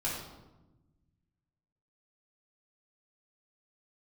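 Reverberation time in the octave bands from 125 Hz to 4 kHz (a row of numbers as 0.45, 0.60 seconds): 2.2, 1.8, 1.2, 1.0, 0.75, 0.70 seconds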